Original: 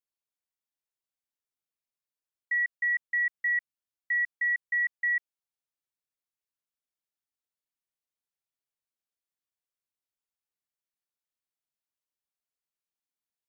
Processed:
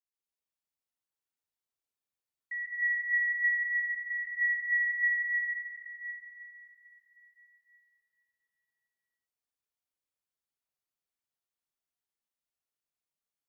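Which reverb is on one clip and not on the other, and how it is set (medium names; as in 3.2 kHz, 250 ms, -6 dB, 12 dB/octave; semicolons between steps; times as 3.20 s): plate-style reverb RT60 4.4 s, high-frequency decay 0.65×, pre-delay 115 ms, DRR -8 dB; trim -9.5 dB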